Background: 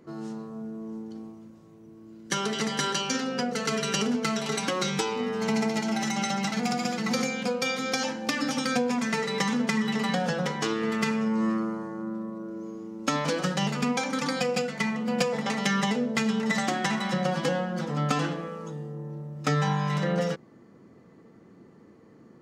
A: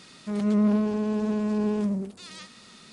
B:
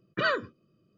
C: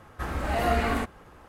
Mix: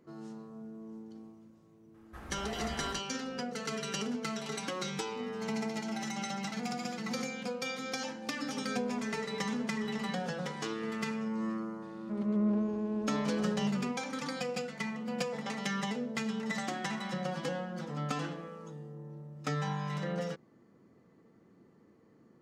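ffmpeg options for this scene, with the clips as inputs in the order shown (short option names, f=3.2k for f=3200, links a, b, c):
-filter_complex "[1:a]asplit=2[a][b];[0:a]volume=-9dB[c];[a]aecho=1:1:2.3:0.4[d];[b]lowpass=f=1.3k:p=1[e];[3:a]atrim=end=1.48,asetpts=PTS-STARTPTS,volume=-15.5dB,afade=t=in:d=0.004:c=hsin,afade=t=out:st=1.476:d=0.004:c=hsin,adelay=1940[f];[d]atrim=end=2.92,asetpts=PTS-STARTPTS,volume=-16dB,afade=t=in:d=0.004:c=hsin,afade=t=out:st=2.916:d=0.004:c=hsin,adelay=8220[g];[e]atrim=end=2.92,asetpts=PTS-STARTPTS,volume=-7.5dB,afade=t=in:d=0.004:c=hsin,afade=t=out:st=2.916:d=0.004:c=hsin,adelay=11820[h];[c][f][g][h]amix=inputs=4:normalize=0"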